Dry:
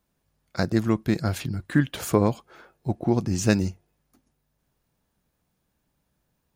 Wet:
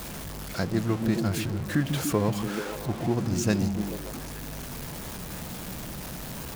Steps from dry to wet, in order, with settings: jump at every zero crossing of -25.5 dBFS; repeats whose band climbs or falls 145 ms, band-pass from 160 Hz, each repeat 0.7 oct, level -2 dB; trim -6 dB

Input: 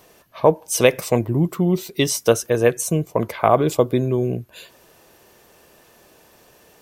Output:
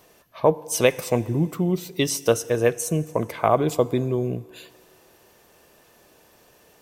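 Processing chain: FDN reverb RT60 2.2 s, low-frequency decay 0.7×, high-frequency decay 0.95×, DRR 18 dB; trim -3.5 dB

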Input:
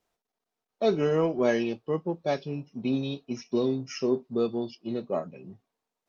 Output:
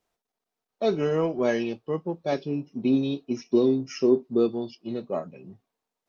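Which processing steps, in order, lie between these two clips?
2.32–4.52 s: peaking EQ 320 Hz +8.5 dB 0.8 oct

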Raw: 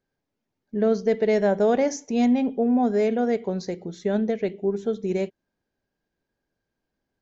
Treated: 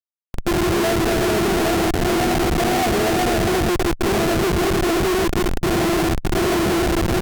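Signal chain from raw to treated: spectral contrast reduction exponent 0.31; wind noise 620 Hz -34 dBFS; band-stop 590 Hz, Q 12; pitch-class resonator E, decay 0.11 s; small resonant body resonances 250/350/740/2900 Hz, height 13 dB, ringing for 45 ms; compression 16:1, threshold -39 dBFS, peak gain reduction 19 dB; speakerphone echo 320 ms, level -8 dB; level rider gain up to 14.5 dB; high-pass 86 Hz 12 dB/octave; high-order bell 570 Hz +10.5 dB; Schmitt trigger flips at -25 dBFS; trim +3.5 dB; Opus 96 kbps 48 kHz

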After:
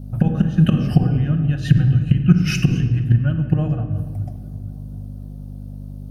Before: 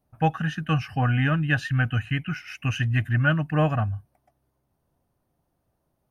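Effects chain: inverted gate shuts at -19 dBFS, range -25 dB; simulated room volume 1400 m³, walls mixed, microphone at 0.95 m; hum 50 Hz, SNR 13 dB; graphic EQ 125/250/500/1000/2000/4000 Hz +7/+3/+4/-7/-11/+3 dB; tape echo 236 ms, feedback 85%, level -23.5 dB, low-pass 2.3 kHz; loudness maximiser +19.5 dB; trim -1 dB

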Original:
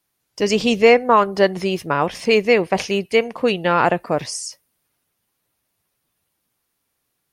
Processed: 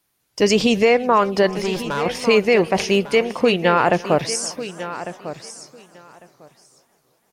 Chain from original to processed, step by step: peak limiter -9.5 dBFS, peak gain reduction 7.5 dB; 1.49–2.06 s: valve stage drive 22 dB, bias 0.5; feedback delay 1150 ms, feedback 15%, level -13 dB; modulated delay 331 ms, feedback 63%, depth 126 cents, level -22 dB; trim +3.5 dB

